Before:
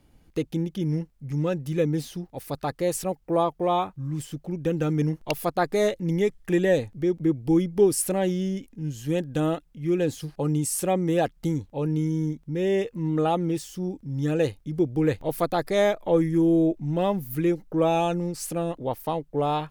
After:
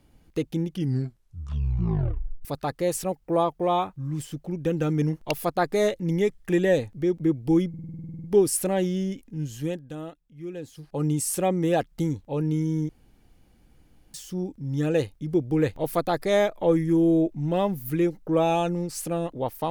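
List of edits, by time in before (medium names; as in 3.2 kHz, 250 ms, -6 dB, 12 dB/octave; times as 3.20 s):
0.68 s: tape stop 1.77 s
7.69 s: stutter 0.05 s, 12 plays
9.03–10.49 s: dip -12 dB, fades 0.40 s quadratic
12.34–13.59 s: room tone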